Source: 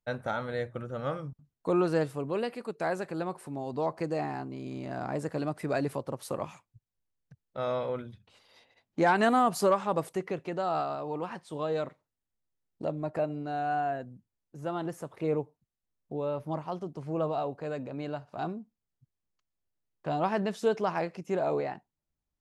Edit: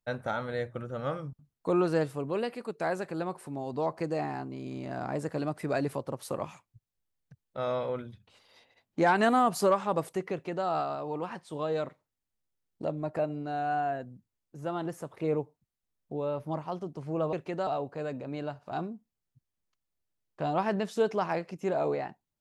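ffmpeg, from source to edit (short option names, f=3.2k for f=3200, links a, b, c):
-filter_complex "[0:a]asplit=3[a][b][c];[a]atrim=end=17.332[d];[b]atrim=start=10.318:end=10.662[e];[c]atrim=start=17.328[f];[d][e]acrossfade=d=0.004:c1=hsin:c2=hsin[g];[g][f]acrossfade=d=0.004:c1=hsin:c2=hsin"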